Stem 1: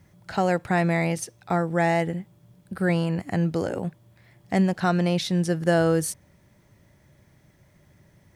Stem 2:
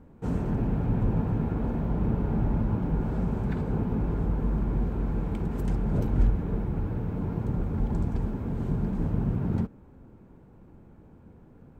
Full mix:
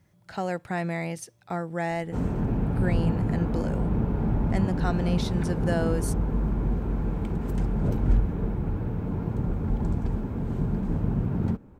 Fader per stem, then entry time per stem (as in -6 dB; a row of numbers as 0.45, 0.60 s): -7.0, +1.0 dB; 0.00, 1.90 s